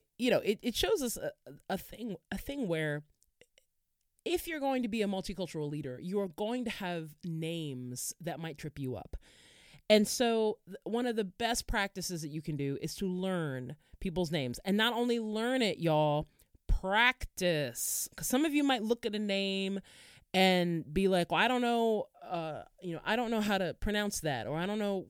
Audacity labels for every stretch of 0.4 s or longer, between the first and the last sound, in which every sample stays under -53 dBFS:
3.580000	4.190000	silence